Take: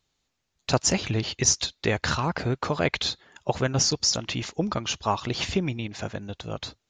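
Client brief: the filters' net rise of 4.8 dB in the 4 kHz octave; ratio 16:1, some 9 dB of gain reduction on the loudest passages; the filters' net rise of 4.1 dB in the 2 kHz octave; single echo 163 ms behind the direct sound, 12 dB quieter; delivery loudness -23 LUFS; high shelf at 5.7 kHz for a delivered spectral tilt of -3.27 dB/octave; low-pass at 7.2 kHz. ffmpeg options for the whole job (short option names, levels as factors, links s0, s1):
-af "lowpass=7200,equalizer=f=2000:t=o:g=3.5,equalizer=f=4000:t=o:g=8.5,highshelf=f=5700:g=-5.5,acompressor=threshold=0.0501:ratio=16,aecho=1:1:163:0.251,volume=2.51"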